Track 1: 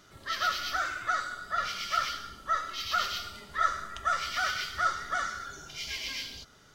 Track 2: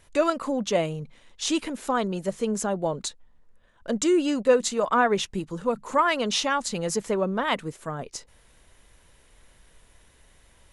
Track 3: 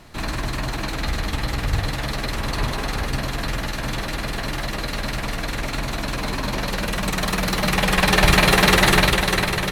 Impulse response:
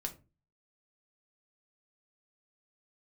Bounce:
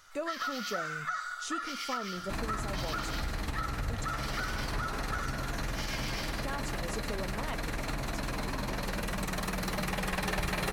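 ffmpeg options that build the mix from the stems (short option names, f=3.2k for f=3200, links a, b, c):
-filter_complex "[0:a]alimiter=limit=-22.5dB:level=0:latency=1:release=373,highpass=f=820:w=0.5412,highpass=f=820:w=1.3066,volume=2dB[a];[1:a]volume=-11.5dB,asplit=3[b][c][d];[b]atrim=end=4.05,asetpts=PTS-STARTPTS,afade=t=out:st=4.046:d=0.004:c=hsin[e];[c]atrim=start=4.05:end=6.45,asetpts=PTS-STARTPTS,volume=0[f];[d]atrim=start=6.45,asetpts=PTS-STARTPTS,afade=t=in:d=0.004:c=hsin[g];[e][f][g]concat=n=3:v=0:a=1,asplit=2[h][i];[i]volume=-12.5dB[j];[2:a]adelay=2150,volume=-5dB[k];[3:a]atrim=start_sample=2205[l];[j][l]afir=irnorm=-1:irlink=0[m];[a][h][k][m]amix=inputs=4:normalize=0,equalizer=f=3.4k:w=1.4:g=-4.5,acompressor=threshold=-31dB:ratio=4"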